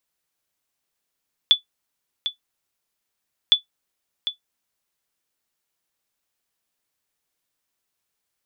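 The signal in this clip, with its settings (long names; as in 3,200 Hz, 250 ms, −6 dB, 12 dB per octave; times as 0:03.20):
ping with an echo 3,460 Hz, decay 0.12 s, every 2.01 s, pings 2, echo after 0.75 s, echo −11 dB −5 dBFS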